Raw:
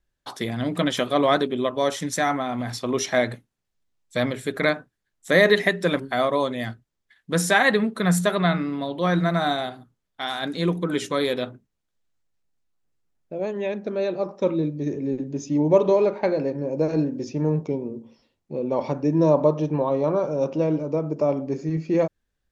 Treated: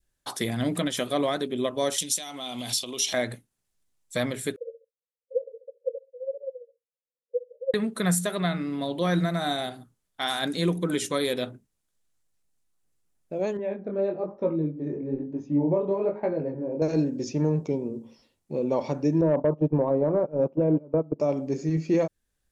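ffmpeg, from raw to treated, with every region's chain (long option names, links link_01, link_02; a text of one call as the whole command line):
ffmpeg -i in.wav -filter_complex "[0:a]asettb=1/sr,asplit=3[link_01][link_02][link_03];[link_01]atrim=end=1.984[link_04];[link_02]atrim=start=1.98:end=3.14,asetpts=PTS-STARTPTS,afade=type=in:duration=0.004:curve=qsin,afade=type=out:start_time=1.156:duration=0.004:curve=qsin,highpass=frequency=230:poles=1,acompressor=threshold=-30dB:ratio=6:attack=3.2:release=140:knee=1:detection=peak,highshelf=frequency=2300:width_type=q:width=3:gain=9[link_05];[link_03]atrim=start=3.136[link_06];[link_04][link_05]acrossfade=duration=0.004:curve1=hsin:curve2=qsin[link_07];[link_07][link_06]acrossfade=duration=0.004:curve1=qsin:curve2=hsin,asettb=1/sr,asplit=3[link_08][link_09][link_10];[link_08]atrim=end=4.564[link_11];[link_09]atrim=start=4.56:end=7.74,asetpts=PTS-STARTPTS,afade=type=in:duration=0.004:curve=qsin,afade=type=out:start_time=3.176:duration=0.004:curve=qsin,asuperpass=centerf=500:order=12:qfactor=5.4,tremolo=f=15:d=0.81[link_12];[link_10]atrim=start=7.736[link_13];[link_11][link_12]acrossfade=duration=0.004:curve1=hsin:curve2=qsin[link_14];[link_14][link_13]acrossfade=duration=0.004:curve1=qsin:curve2=hsin,asettb=1/sr,asplit=3[link_15][link_16][link_17];[link_15]atrim=end=13.574[link_18];[link_16]atrim=start=13.57:end=16.82,asetpts=PTS-STARTPTS,afade=type=in:duration=0.004:curve=qsin,afade=type=out:start_time=3.246:duration=0.004:curve=qsin,lowpass=1400,flanger=delay=18:depth=7.6:speed=1.1[link_19];[link_17]atrim=start=16.816[link_20];[link_18][link_19]acrossfade=duration=0.004:curve1=hsin:curve2=qsin[link_21];[link_21][link_20]acrossfade=duration=0.004:curve1=qsin:curve2=hsin,asettb=1/sr,asplit=3[link_22][link_23][link_24];[link_22]atrim=end=19.214[link_25];[link_23]atrim=start=19.21:end=21.2,asetpts=PTS-STARTPTS,afade=type=in:duration=0.004:curve=qsin,afade=type=out:start_time=1.986:duration=0.004:curve=qsin,agate=range=-20dB:threshold=-25dB:ratio=16:release=100:detection=peak,lowpass=1100,acontrast=90[link_26];[link_24]atrim=start=21.196[link_27];[link_25][link_26]acrossfade=duration=0.004:curve1=hsin:curve2=qsin[link_28];[link_28][link_27]acrossfade=duration=0.004:curve1=qsin:curve2=hsin,equalizer=frequency=9900:width=0.86:gain=11,alimiter=limit=-14dB:level=0:latency=1:release=437,adynamicequalizer=threshold=0.00708:dfrequency=1100:dqfactor=1.4:tfrequency=1100:tqfactor=1.4:attack=5:release=100:ratio=0.375:range=2.5:mode=cutabove:tftype=bell" out.wav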